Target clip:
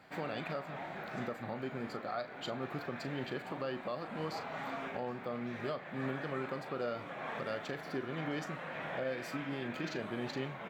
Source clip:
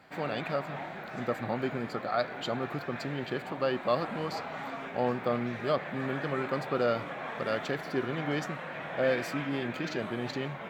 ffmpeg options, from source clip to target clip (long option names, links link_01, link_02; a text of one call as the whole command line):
ffmpeg -i in.wav -filter_complex "[0:a]alimiter=level_in=1.5dB:limit=-24dB:level=0:latency=1:release=470,volume=-1.5dB,asplit=2[link_01][link_02];[link_02]adelay=38,volume=-11.5dB[link_03];[link_01][link_03]amix=inputs=2:normalize=0,volume=-2dB" out.wav